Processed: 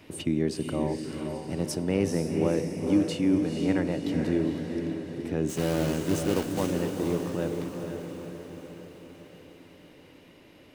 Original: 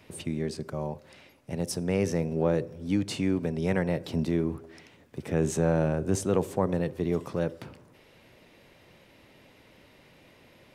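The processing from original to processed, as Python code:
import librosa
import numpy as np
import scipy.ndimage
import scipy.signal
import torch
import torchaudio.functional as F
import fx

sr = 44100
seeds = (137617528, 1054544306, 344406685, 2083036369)

p1 = fx.block_float(x, sr, bits=3, at=(5.48, 6.7), fade=0.02)
p2 = fx.rider(p1, sr, range_db=5, speed_s=2.0)
p3 = fx.small_body(p2, sr, hz=(300.0, 2900.0), ring_ms=45, db=9)
p4 = p3 + fx.echo_diffused(p3, sr, ms=479, feedback_pct=57, wet_db=-5.0, dry=0)
y = F.gain(torch.from_numpy(p4), -3.0).numpy()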